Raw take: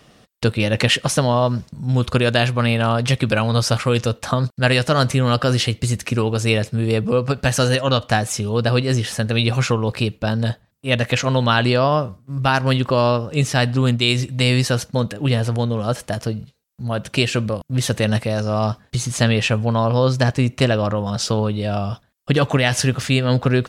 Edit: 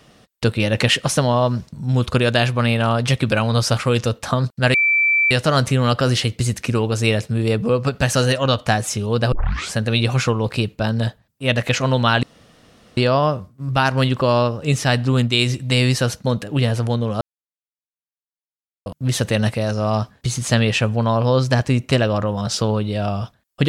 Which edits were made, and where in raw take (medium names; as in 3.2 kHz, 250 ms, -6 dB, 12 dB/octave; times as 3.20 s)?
4.74 s: add tone 2.33 kHz -13 dBFS 0.57 s
8.75 s: tape start 0.43 s
11.66 s: insert room tone 0.74 s
15.90–17.55 s: mute